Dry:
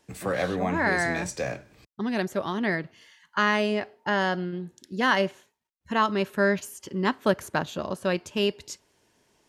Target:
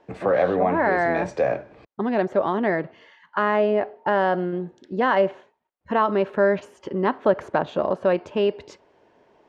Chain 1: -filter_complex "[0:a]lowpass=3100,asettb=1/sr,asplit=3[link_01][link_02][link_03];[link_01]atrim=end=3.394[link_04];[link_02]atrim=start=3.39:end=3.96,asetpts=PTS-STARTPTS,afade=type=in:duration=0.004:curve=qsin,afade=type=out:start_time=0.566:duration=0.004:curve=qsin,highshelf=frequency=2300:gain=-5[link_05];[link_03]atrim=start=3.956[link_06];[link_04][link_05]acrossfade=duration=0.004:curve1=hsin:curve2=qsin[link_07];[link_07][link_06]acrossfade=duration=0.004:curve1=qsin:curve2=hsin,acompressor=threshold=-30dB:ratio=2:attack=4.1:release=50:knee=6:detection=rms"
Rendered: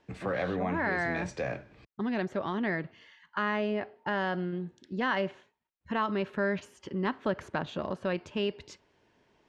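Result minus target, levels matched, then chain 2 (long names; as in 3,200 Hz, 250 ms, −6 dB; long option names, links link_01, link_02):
500 Hz band −3.0 dB
-filter_complex "[0:a]lowpass=3100,asettb=1/sr,asplit=3[link_01][link_02][link_03];[link_01]atrim=end=3.394[link_04];[link_02]atrim=start=3.39:end=3.96,asetpts=PTS-STARTPTS,afade=type=in:duration=0.004:curve=qsin,afade=type=out:start_time=0.566:duration=0.004:curve=qsin,highshelf=frequency=2300:gain=-5[link_05];[link_03]atrim=start=3.956[link_06];[link_04][link_05]acrossfade=duration=0.004:curve1=hsin:curve2=qsin[link_07];[link_07][link_06]acrossfade=duration=0.004:curve1=qsin:curve2=hsin,acompressor=threshold=-30dB:ratio=2:attack=4.1:release=50:knee=6:detection=rms,equalizer=frequency=610:width=0.52:gain=13.5"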